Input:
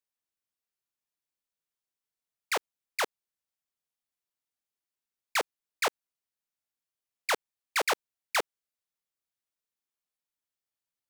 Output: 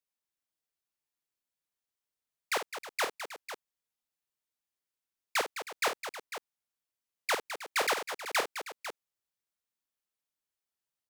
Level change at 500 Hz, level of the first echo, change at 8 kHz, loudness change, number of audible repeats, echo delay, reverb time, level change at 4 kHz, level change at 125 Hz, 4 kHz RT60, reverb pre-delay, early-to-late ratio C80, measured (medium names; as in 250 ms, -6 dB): -0.5 dB, -9.0 dB, -1.0 dB, -2.0 dB, 4, 52 ms, no reverb, -0.5 dB, no reading, no reverb, no reverb, no reverb